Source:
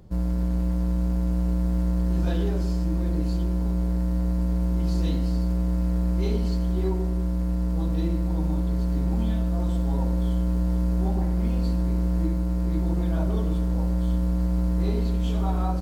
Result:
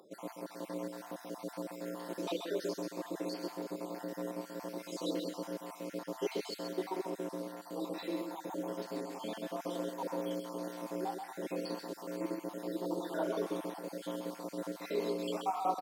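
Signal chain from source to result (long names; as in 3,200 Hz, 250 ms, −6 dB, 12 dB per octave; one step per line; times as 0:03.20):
time-frequency cells dropped at random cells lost 52%
high-pass filter 350 Hz 24 dB per octave
repeating echo 133 ms, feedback 16%, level −6 dB
level +1 dB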